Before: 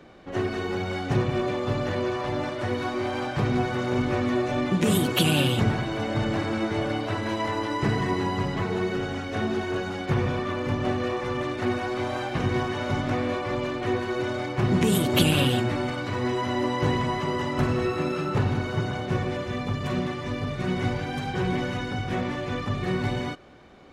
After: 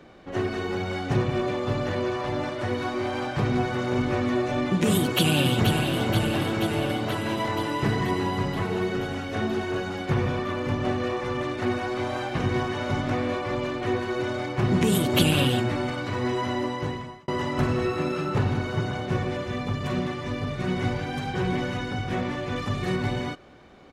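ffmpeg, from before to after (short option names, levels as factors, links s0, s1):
-filter_complex "[0:a]asplit=2[s0][s1];[s1]afade=t=in:st=4.97:d=0.01,afade=t=out:st=5.7:d=0.01,aecho=0:1:480|960|1440|1920|2400|2880|3360|3840|4320|4800|5280:0.501187|0.350831|0.245582|0.171907|0.120335|0.0842345|0.0589642|0.0412749|0.0288924|0.0202247|0.0141573[s2];[s0][s2]amix=inputs=2:normalize=0,asettb=1/sr,asplit=3[s3][s4][s5];[s3]atrim=end=22.564[s6];[s4]atrim=start=22.56:end=22.96,asetpts=PTS-STARTPTS,afade=t=in:d=0.004:c=qsin,afade=t=out:st=0.396:d=0.004:c=qsin,highshelf=f=4900:g=7.5[s7];[s5]atrim=start=22.956[s8];[s6][s7]acrossfade=d=0.004:c1=hsin:c2=qsin[s9];[s9][s8]acrossfade=d=0.004:c1=qsin:c2=hsin,asplit=2[s10][s11];[s10]atrim=end=17.28,asetpts=PTS-STARTPTS,afade=t=out:st=16.46:d=0.82[s12];[s11]atrim=start=17.28,asetpts=PTS-STARTPTS,afade=t=in:d=0.004:c=hsin[s13];[s12][s13]concat=n=2:v=0:a=1"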